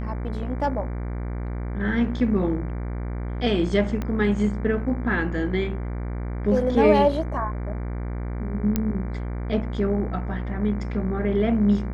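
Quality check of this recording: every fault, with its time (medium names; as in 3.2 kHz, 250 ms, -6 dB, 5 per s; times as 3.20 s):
buzz 60 Hz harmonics 39 -29 dBFS
4.02 s: pop -16 dBFS
8.76 s: pop -9 dBFS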